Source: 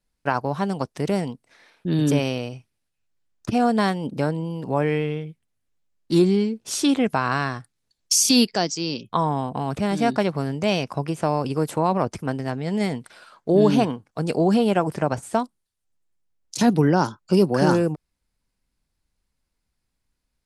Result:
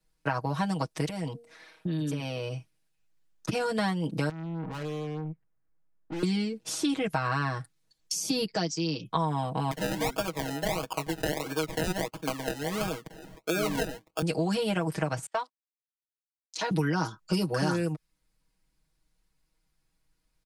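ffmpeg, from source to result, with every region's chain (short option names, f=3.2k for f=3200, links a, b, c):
-filter_complex "[0:a]asettb=1/sr,asplit=3[a][b][c];[a]atrim=end=1.054[d];[b]atrim=start=1.05:end=2.54,asetpts=PTS-STARTPTS,afade=t=in:d=0.004:c=qsin,afade=t=out:st=1.486:d=0.004:c=qsin,bandreject=f=235:t=h:w=4,bandreject=f=470:t=h:w=4,bandreject=f=705:t=h:w=4,acompressor=threshold=-28dB:ratio=10:attack=3.2:release=140:knee=1:detection=peak[e];[c]atrim=start=2.536[f];[d][e]acrossfade=d=0.004:c1=hsin:c2=qsin[g];[g][f]acrossfade=d=0.004:c1=qsin:c2=hsin,asettb=1/sr,asplit=3[h][i][j];[h]atrim=end=4.294[k];[i]atrim=start=4.29:end=6.23,asetpts=PTS-STARTPTS,afade=t=in:d=0.004:c=qsin,afade=t=out:st=1.936:d=0.004:c=qsin,lowpass=f=1.8k:w=0.5412,lowpass=f=1.8k:w=1.3066,aeval=exprs='(tanh(63.1*val(0)+0.35)-tanh(0.35))/63.1':c=same[l];[j]atrim=start=6.226[m];[k][l]acrossfade=d=0.004:c1=hsin:c2=qsin[n];[n][m]acrossfade=d=0.004:c1=qsin:c2=hsin,asettb=1/sr,asplit=3[o][p][q];[o]atrim=end=9.714[r];[p]atrim=start=9.71:end=14.22,asetpts=PTS-STARTPTS,afade=t=in:d=0.004:c=qsin,afade=t=out:st=4.506:d=0.004:c=qsin,highpass=330,acrusher=samples=31:mix=1:aa=0.000001:lfo=1:lforange=18.6:lforate=1.5[s];[q]atrim=start=14.216[t];[r][s]acrossfade=d=0.004:c1=hsin:c2=qsin[u];[u][t]acrossfade=d=0.004:c1=qsin:c2=hsin,asettb=1/sr,asplit=3[v][w][x];[v]atrim=end=15.264[y];[w]atrim=start=15.26:end=16.71,asetpts=PTS-STARTPTS,afade=t=in:d=0.004:c=qsin,afade=t=out:st=1.446:d=0.004:c=qsin,highpass=760,lowpass=4.3k,agate=range=-33dB:threshold=-49dB:ratio=16:release=100:detection=peak[z];[x]atrim=start=16.706[aa];[y][z]acrossfade=d=0.004:c1=hsin:c2=qsin[ab];[ab][aa]acrossfade=d=0.004:c1=qsin:c2=hsin,aecho=1:1:6.3:0.93,acrossover=split=150|1300[ac][ad][ae];[ac]acompressor=threshold=-35dB:ratio=4[af];[ad]acompressor=threshold=-29dB:ratio=4[ag];[ae]acompressor=threshold=-33dB:ratio=4[ah];[af][ag][ah]amix=inputs=3:normalize=0,volume=-1dB"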